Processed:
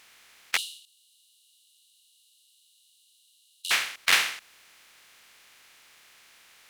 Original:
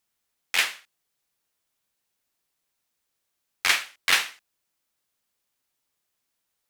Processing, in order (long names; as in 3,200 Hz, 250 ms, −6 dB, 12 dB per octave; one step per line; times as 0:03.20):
compressor on every frequency bin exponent 0.4
0:00.57–0:03.71: Chebyshev high-pass with heavy ripple 2,800 Hz, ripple 9 dB
expander for the loud parts 1.5 to 1, over −39 dBFS
level −2 dB